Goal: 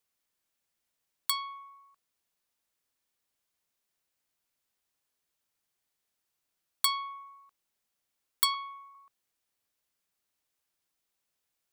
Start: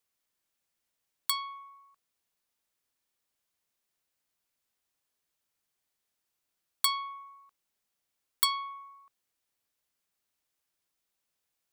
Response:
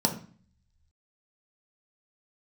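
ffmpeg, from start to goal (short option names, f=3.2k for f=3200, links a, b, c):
-filter_complex "[0:a]asettb=1/sr,asplit=3[a][b][c];[a]atrim=end=8.544[d];[b]atrim=start=8.54:end=8.95,asetpts=PTS-STARTPTS,afade=t=in:d=0.004:c=qsin,afade=t=out:st=0.406:d=0.004:c=qsin,highpass=1k[e];[c]atrim=start=8.946[f];[d][e]acrossfade=d=0.004:c1=hsin:c2=qsin[g];[g][f]acrossfade=d=0.004:c1=qsin:c2=hsin"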